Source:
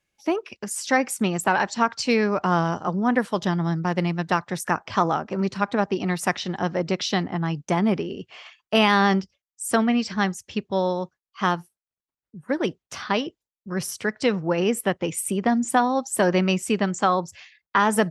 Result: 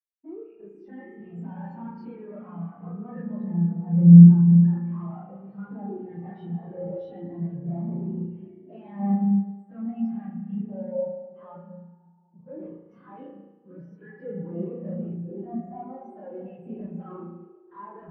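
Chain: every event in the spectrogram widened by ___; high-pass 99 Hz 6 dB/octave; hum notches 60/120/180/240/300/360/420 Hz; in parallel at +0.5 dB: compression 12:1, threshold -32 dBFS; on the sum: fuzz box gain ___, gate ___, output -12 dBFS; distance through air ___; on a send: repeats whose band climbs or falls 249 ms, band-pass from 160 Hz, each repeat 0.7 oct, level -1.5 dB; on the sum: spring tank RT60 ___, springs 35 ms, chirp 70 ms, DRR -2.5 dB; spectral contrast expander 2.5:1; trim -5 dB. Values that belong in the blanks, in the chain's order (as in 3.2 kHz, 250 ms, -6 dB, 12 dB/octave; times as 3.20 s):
60 ms, 33 dB, -32 dBFS, 120 m, 2.6 s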